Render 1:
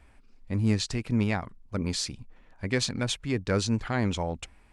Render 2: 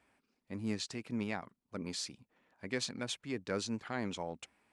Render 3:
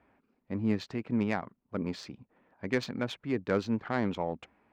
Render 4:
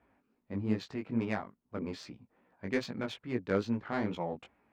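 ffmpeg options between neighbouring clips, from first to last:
ffmpeg -i in.wav -af "highpass=190,volume=-8.5dB" out.wav
ffmpeg -i in.wav -af "adynamicsmooth=sensitivity=2.5:basefreq=1800,volume=8dB" out.wav
ffmpeg -i in.wav -af "flanger=delay=16.5:depth=4.1:speed=2.4" out.wav

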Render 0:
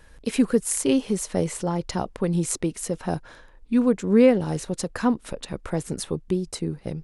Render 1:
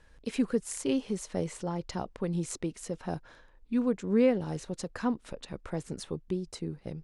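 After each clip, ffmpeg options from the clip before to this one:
ffmpeg -i in.wav -af "lowpass=7800,volume=-8dB" out.wav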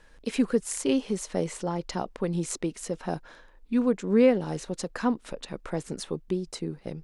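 ffmpeg -i in.wav -af "equalizer=frequency=81:width=1.3:gain=-14,volume=5dB" out.wav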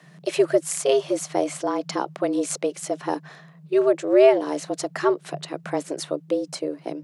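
ffmpeg -i in.wav -af "afreqshift=140,volume=5dB" out.wav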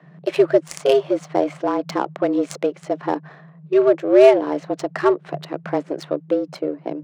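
ffmpeg -i in.wav -af "adynamicsmooth=sensitivity=2.5:basefreq=1700,volume=4dB" out.wav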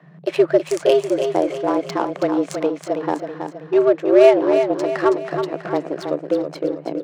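ffmpeg -i in.wav -af "aecho=1:1:324|648|972|1296|1620:0.447|0.205|0.0945|0.0435|0.02" out.wav

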